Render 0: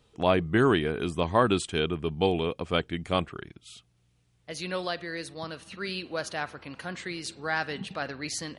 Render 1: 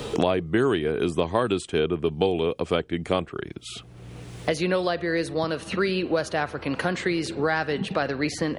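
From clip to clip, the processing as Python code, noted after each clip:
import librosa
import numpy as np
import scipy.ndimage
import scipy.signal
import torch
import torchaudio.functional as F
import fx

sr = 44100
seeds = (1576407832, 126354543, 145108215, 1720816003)

y = fx.peak_eq(x, sr, hz=430.0, db=6.0, octaves=1.4)
y = fx.band_squash(y, sr, depth_pct=100)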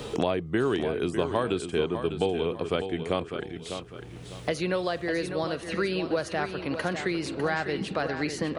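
y = fx.echo_feedback(x, sr, ms=601, feedback_pct=32, wet_db=-8.5)
y = F.gain(torch.from_numpy(y), -4.0).numpy()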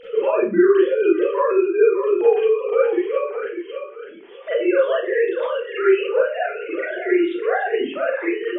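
y = fx.sine_speech(x, sr)
y = fx.rev_schroeder(y, sr, rt60_s=0.34, comb_ms=32, drr_db=-9.0)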